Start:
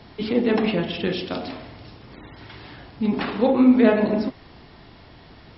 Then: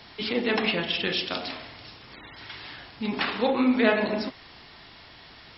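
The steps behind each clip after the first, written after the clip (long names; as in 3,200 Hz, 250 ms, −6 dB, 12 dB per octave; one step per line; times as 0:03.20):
tilt shelving filter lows −7.5 dB, about 880 Hz
level −1.5 dB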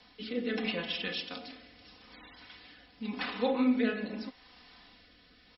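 comb filter 4 ms, depth 76%
rotating-speaker cabinet horn 0.8 Hz
level −9 dB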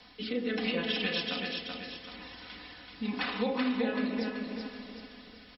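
downward compressor, threshold −32 dBFS, peak gain reduction 9.5 dB
on a send: repeating echo 382 ms, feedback 40%, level −4 dB
on the sum: level +4 dB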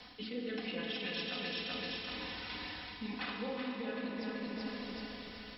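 reversed playback
downward compressor, threshold −40 dBFS, peak gain reduction 14 dB
reversed playback
four-comb reverb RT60 3.5 s, combs from 33 ms, DRR 3.5 dB
level +2 dB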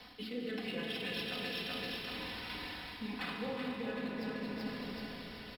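running median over 5 samples
echo with shifted repeats 218 ms, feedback 55%, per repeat −44 Hz, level −12 dB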